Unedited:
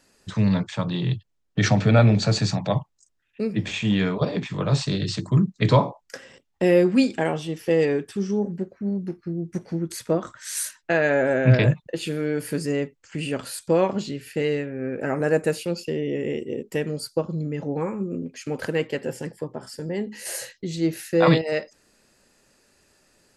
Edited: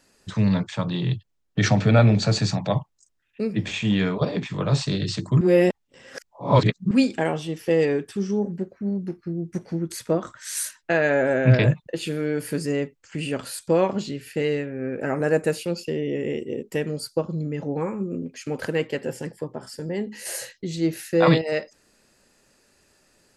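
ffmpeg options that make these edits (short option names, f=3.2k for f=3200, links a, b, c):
-filter_complex "[0:a]asplit=3[a][b][c];[a]atrim=end=5.412[d];[b]atrim=start=5.408:end=6.912,asetpts=PTS-STARTPTS,areverse[e];[c]atrim=start=6.908[f];[d][e]acrossfade=d=0.004:c1=hsin:c2=hsin[g];[g][f]acrossfade=d=0.004:c1=hsin:c2=hsin"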